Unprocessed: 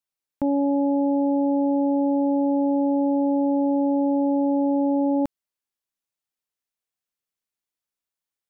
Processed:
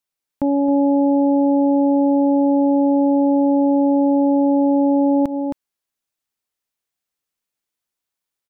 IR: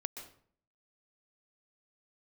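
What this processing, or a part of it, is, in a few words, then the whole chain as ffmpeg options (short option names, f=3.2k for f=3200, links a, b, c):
ducked delay: -filter_complex "[0:a]asplit=3[a][b][c];[b]adelay=267,volume=-5dB[d];[c]apad=whole_len=386221[e];[d][e]sidechaincompress=threshold=-27dB:ratio=8:attack=7:release=150[f];[a][f]amix=inputs=2:normalize=0,volume=4dB"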